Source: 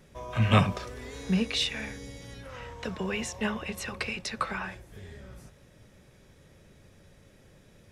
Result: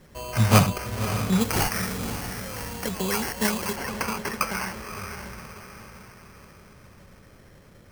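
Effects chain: diffused feedback echo 0.568 s, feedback 48%, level -9 dB; sample-and-hold 12×; high shelf 4600 Hz +4.5 dB, from 1.41 s +10.5 dB, from 3.76 s +2 dB; gain +4 dB

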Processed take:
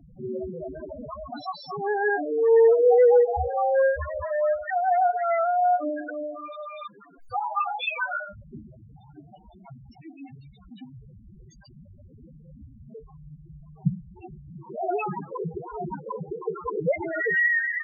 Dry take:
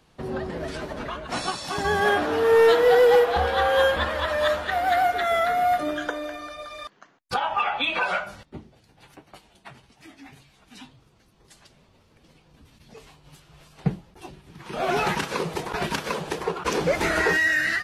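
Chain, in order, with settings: zero-crossing step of -38.5 dBFS; loudest bins only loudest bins 4

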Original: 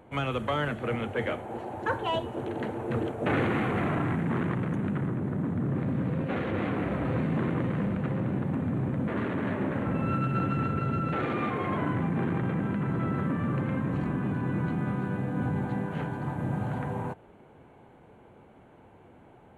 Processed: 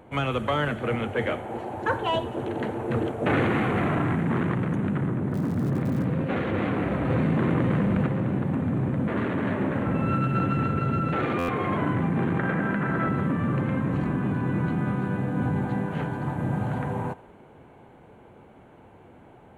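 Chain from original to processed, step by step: 5.31–6.03 crackle 190/s -39 dBFS; 12.39–13.09 fifteen-band EQ 100 Hz -9 dB, 630 Hz +4 dB, 1600 Hz +10 dB; thinning echo 88 ms, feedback 68%, level -20.5 dB; stuck buffer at 11.38, samples 512, times 8; 7.1–8.07 fast leveller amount 100%; gain +3.5 dB

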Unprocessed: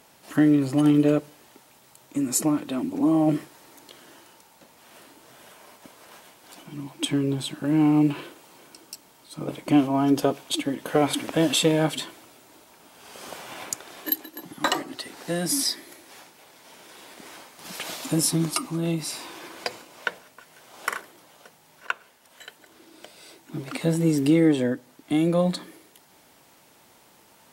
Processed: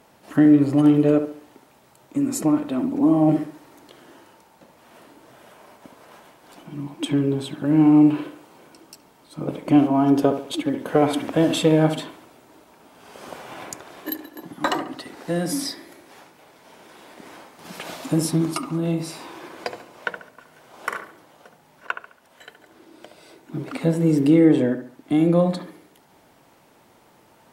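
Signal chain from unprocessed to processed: high shelf 2200 Hz -10 dB; dark delay 70 ms, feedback 36%, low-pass 2500 Hz, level -9 dB; gain +3.5 dB

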